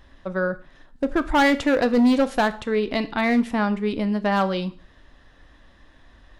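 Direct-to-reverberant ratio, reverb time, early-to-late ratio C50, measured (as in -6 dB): 12.0 dB, 0.45 s, 17.5 dB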